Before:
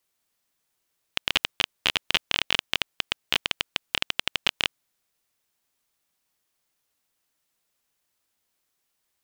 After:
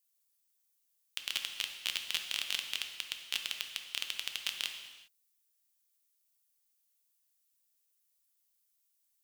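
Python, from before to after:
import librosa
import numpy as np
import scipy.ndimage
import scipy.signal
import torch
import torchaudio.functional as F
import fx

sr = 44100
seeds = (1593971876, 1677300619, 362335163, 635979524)

y = librosa.effects.preemphasis(x, coef=0.9, zi=[0.0])
y = fx.rev_gated(y, sr, seeds[0], gate_ms=430, shape='falling', drr_db=4.5)
y = y * 10.0 ** (-3.5 / 20.0)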